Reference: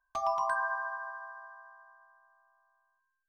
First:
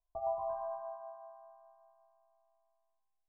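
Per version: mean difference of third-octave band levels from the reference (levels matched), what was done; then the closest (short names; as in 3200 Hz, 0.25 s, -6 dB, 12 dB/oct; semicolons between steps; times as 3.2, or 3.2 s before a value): 4.5 dB: steep low-pass 720 Hz 36 dB/oct; bell 250 Hz -14.5 dB 1.4 oct; AGC gain up to 3.5 dB; plate-style reverb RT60 2.3 s, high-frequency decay 1×, pre-delay 0.105 s, DRR 17 dB; gain +3.5 dB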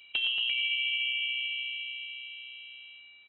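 13.0 dB: per-bin compression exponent 0.6; compressor, threshold -33 dBFS, peak gain reduction 8 dB; on a send: echo 93 ms -12.5 dB; on the sum: inverted band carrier 3900 Hz; gain +6 dB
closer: first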